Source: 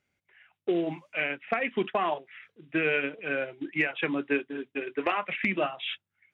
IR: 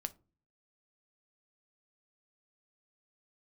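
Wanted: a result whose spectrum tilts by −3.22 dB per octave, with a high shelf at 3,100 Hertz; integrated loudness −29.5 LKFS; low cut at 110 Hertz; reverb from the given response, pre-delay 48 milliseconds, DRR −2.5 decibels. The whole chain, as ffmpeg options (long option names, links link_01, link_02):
-filter_complex "[0:a]highpass=110,highshelf=frequency=3100:gain=-7,asplit=2[link_01][link_02];[1:a]atrim=start_sample=2205,adelay=48[link_03];[link_02][link_03]afir=irnorm=-1:irlink=0,volume=4dB[link_04];[link_01][link_04]amix=inputs=2:normalize=0,volume=-2.5dB"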